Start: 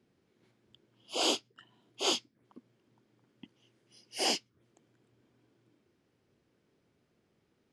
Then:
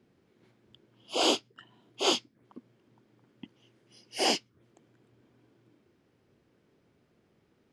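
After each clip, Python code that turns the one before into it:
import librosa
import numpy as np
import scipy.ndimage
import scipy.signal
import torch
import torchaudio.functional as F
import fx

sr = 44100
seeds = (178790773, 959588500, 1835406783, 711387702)

y = fx.high_shelf(x, sr, hz=3900.0, db=-6.0)
y = y * librosa.db_to_amplitude(5.5)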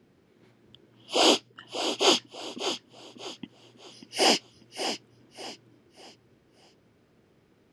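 y = fx.echo_feedback(x, sr, ms=592, feedback_pct=33, wet_db=-9.5)
y = y * librosa.db_to_amplitude(5.0)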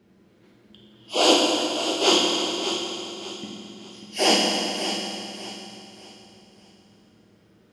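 y = fx.rev_fdn(x, sr, rt60_s=2.8, lf_ratio=1.0, hf_ratio=0.9, size_ms=29.0, drr_db=-2.5)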